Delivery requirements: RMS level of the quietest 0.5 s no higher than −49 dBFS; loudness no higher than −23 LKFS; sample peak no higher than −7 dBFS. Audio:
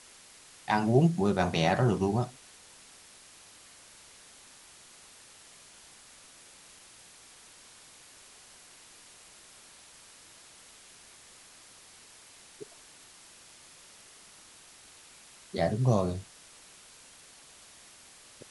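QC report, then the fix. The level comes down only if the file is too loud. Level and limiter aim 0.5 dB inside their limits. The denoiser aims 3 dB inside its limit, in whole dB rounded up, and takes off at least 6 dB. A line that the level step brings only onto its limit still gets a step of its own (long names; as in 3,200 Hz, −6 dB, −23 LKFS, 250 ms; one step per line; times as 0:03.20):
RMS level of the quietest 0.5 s −54 dBFS: in spec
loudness −28.0 LKFS: in spec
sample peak −10.5 dBFS: in spec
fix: no processing needed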